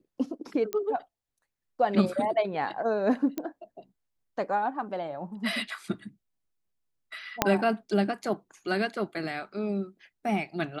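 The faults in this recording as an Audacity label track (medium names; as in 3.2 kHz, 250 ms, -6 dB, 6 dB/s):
0.730000	0.730000	pop -16 dBFS
3.380000	3.380000	pop -18 dBFS
7.420000	7.420000	pop -4 dBFS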